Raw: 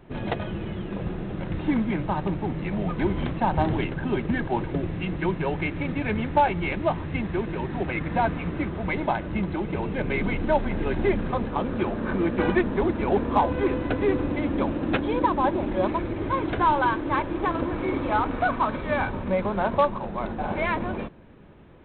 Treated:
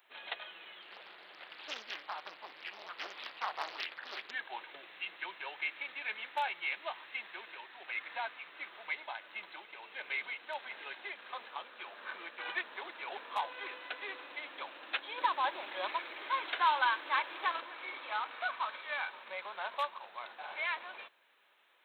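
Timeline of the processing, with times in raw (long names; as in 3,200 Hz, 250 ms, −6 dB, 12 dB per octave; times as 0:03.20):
0:00.82–0:04.31: highs frequency-modulated by the lows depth 0.81 ms
0:07.43–0:12.46: amplitude tremolo 1.5 Hz, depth 34%
0:15.18–0:17.60: clip gain +5 dB
whole clip: high-pass filter 670 Hz 12 dB per octave; first difference; level +5.5 dB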